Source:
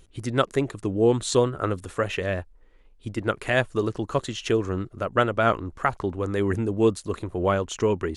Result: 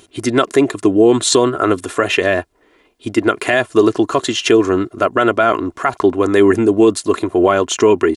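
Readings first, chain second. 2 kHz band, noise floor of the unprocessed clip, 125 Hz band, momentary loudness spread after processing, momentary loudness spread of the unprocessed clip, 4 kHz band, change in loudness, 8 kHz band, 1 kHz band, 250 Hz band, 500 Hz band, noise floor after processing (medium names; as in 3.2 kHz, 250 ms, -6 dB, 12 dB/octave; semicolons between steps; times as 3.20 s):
+10.0 dB, -54 dBFS, +1.0 dB, 6 LU, 8 LU, +12.5 dB, +10.5 dB, +14.0 dB, +9.5 dB, +12.5 dB, +11.0 dB, -56 dBFS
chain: high-pass 190 Hz 12 dB/octave; comb 2.9 ms, depth 49%; loudness maximiser +14.5 dB; trim -1 dB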